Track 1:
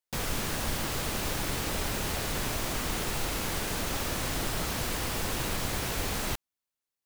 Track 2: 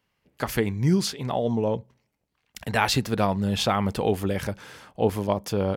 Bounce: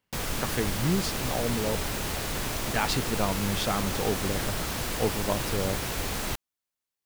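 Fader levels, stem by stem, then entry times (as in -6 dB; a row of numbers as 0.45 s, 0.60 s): +0.5 dB, -5.5 dB; 0.00 s, 0.00 s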